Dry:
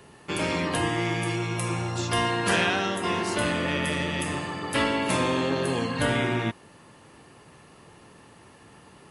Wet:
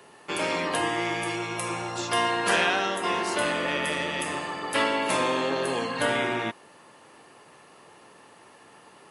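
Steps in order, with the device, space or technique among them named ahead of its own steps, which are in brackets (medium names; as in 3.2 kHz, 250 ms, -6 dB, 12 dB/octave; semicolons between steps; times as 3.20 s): filter by subtraction (in parallel: low-pass 650 Hz 12 dB/octave + polarity flip)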